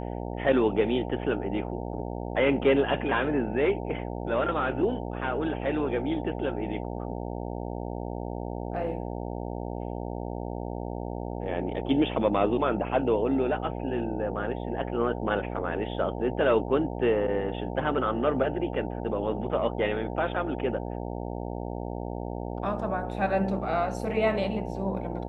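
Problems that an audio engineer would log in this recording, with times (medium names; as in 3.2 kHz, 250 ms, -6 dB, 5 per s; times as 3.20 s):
buzz 60 Hz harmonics 15 -34 dBFS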